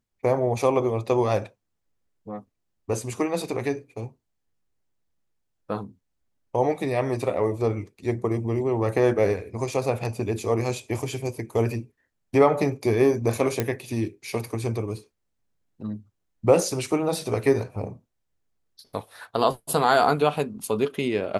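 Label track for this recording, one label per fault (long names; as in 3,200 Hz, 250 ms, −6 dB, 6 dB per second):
13.600000	13.600000	click −9 dBFS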